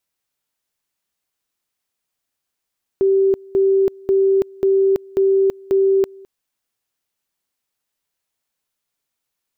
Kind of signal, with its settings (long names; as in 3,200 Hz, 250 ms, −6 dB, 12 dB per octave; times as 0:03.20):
tone at two levels in turn 388 Hz −11.5 dBFS, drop 25.5 dB, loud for 0.33 s, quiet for 0.21 s, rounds 6